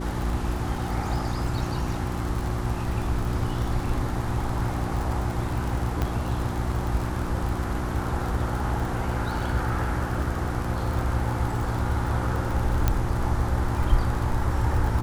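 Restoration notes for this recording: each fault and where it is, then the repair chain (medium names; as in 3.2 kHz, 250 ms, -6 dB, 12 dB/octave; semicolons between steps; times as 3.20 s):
crackle 50 per s -29 dBFS
hum 60 Hz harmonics 6 -31 dBFS
6.02 s: pop -13 dBFS
12.88 s: pop -8 dBFS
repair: de-click; de-hum 60 Hz, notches 6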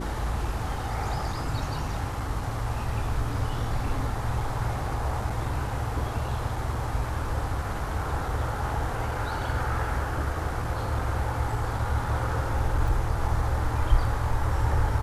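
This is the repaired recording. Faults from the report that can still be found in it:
6.02 s: pop
12.88 s: pop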